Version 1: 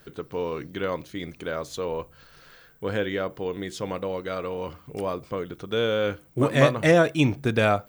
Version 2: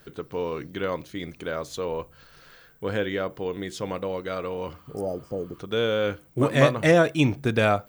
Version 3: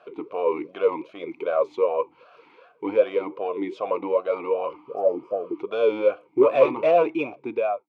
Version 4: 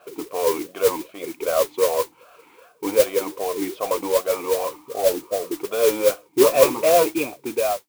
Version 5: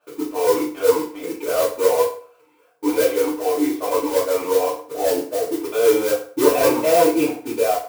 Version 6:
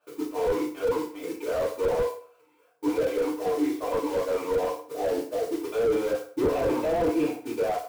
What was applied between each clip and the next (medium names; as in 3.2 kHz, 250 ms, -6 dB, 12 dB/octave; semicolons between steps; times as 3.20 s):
spectral replace 4.87–5.57 s, 900–4700 Hz before
fade out at the end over 1.09 s; overdrive pedal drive 21 dB, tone 1.3 kHz, clips at -4 dBFS; talking filter a-u 2.6 Hz; trim +6 dB
modulation noise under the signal 11 dB; trim +2 dB
waveshaping leveller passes 2; FDN reverb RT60 0.48 s, low-frequency decay 0.9×, high-frequency decay 0.75×, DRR -8.5 dB; trim -14.5 dB
slew-rate limiter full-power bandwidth 84 Hz; trim -5.5 dB